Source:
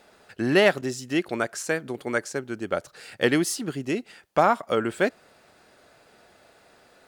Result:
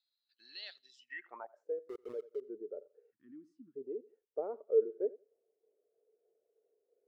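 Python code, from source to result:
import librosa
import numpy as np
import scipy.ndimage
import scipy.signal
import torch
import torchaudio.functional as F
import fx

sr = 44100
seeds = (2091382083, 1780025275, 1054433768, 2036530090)

p1 = fx.filter_sweep_bandpass(x, sr, from_hz=4100.0, to_hz=440.0, start_s=0.88, end_s=1.67, q=7.7)
p2 = fx.sample_gate(p1, sr, floor_db=-39.5, at=(1.78, 2.4), fade=0.02)
p3 = p2 + fx.echo_feedback(p2, sr, ms=87, feedback_pct=32, wet_db=-22.0, dry=0)
p4 = fx.tremolo_shape(p3, sr, shape='saw_down', hz=3.2, depth_pct=40)
p5 = fx.over_compress(p4, sr, threshold_db=-45.0, ratio=-1.0)
p6 = p4 + (p5 * librosa.db_to_amplitude(-1.5))
p7 = fx.ellip_bandstop(p6, sr, low_hz=290.0, high_hz=1100.0, order=3, stop_db=40, at=(3.11, 3.75), fade=0.02)
p8 = fx.high_shelf(p7, sr, hz=3200.0, db=11.0, at=(4.39, 4.8))
p9 = fx.spectral_expand(p8, sr, expansion=1.5)
y = p9 * librosa.db_to_amplitude(1.0)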